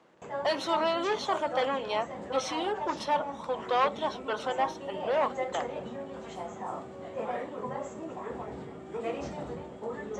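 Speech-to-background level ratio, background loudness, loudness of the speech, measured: 6.5 dB, -38.0 LUFS, -31.5 LUFS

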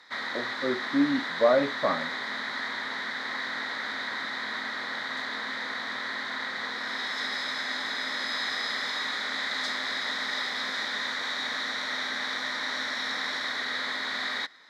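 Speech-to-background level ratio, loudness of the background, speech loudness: 3.5 dB, -30.5 LUFS, -27.0 LUFS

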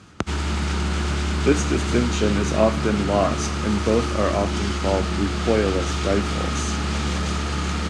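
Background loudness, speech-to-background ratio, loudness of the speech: -25.0 LUFS, 1.0 dB, -24.0 LUFS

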